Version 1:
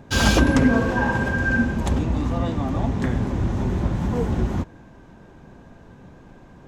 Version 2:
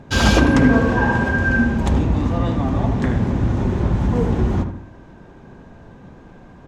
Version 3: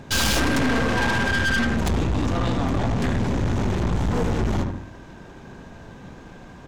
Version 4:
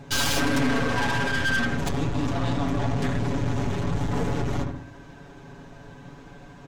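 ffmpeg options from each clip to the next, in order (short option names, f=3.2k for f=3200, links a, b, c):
-filter_complex "[0:a]highshelf=f=8.9k:g=-10,asplit=2[a][b];[b]adelay=77,lowpass=f=1.9k:p=1,volume=-7dB,asplit=2[c][d];[d]adelay=77,lowpass=f=1.9k:p=1,volume=0.48,asplit=2[e][f];[f]adelay=77,lowpass=f=1.9k:p=1,volume=0.48,asplit=2[g][h];[h]adelay=77,lowpass=f=1.9k:p=1,volume=0.48,asplit=2[i][j];[j]adelay=77,lowpass=f=1.9k:p=1,volume=0.48,asplit=2[k][l];[l]adelay=77,lowpass=f=1.9k:p=1,volume=0.48[m];[c][e][g][i][k][m]amix=inputs=6:normalize=0[n];[a][n]amix=inputs=2:normalize=0,volume=3dB"
-af "highshelf=f=2.1k:g=10.5,aeval=exprs='(tanh(12.6*val(0)+0.55)-tanh(0.55))/12.6':c=same,volume=2.5dB"
-af "aecho=1:1:7.1:0.85,volume=-5dB"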